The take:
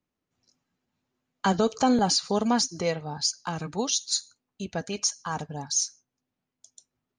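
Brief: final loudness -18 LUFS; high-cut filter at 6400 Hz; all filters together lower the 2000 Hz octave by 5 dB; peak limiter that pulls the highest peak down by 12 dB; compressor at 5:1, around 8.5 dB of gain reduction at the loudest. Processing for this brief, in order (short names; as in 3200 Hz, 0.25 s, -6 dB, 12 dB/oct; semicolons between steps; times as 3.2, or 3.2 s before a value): LPF 6400 Hz; bell 2000 Hz -7 dB; compressor 5:1, threshold -28 dBFS; gain +20.5 dB; limiter -8.5 dBFS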